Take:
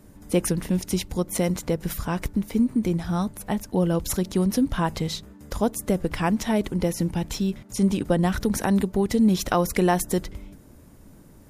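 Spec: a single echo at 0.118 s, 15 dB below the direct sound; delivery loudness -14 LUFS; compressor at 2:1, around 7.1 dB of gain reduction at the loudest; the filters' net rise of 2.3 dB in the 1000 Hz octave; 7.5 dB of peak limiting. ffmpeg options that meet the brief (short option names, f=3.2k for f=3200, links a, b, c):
-af "equalizer=f=1k:t=o:g=3,acompressor=threshold=-29dB:ratio=2,alimiter=limit=-20.5dB:level=0:latency=1,aecho=1:1:118:0.178,volume=17.5dB"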